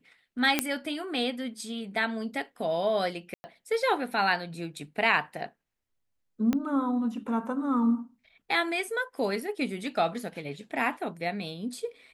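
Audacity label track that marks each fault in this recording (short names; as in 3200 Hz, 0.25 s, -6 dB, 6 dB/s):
0.590000	0.590000	pop -7 dBFS
3.340000	3.440000	gap 0.1 s
6.530000	6.530000	pop -15 dBFS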